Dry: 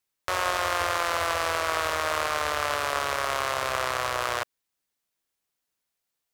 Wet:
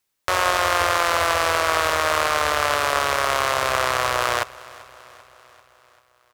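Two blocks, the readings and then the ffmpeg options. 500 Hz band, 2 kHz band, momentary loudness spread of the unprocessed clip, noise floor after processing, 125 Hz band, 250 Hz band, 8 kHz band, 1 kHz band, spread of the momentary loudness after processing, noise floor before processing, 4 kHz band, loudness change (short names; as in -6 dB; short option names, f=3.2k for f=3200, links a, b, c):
+6.5 dB, +6.5 dB, 3 LU, -63 dBFS, +6.5 dB, +6.5 dB, +6.5 dB, +6.5 dB, 3 LU, -83 dBFS, +6.5 dB, +6.5 dB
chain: -af "aecho=1:1:391|782|1173|1564|1955:0.0891|0.0526|0.031|0.0183|0.0108,volume=6.5dB"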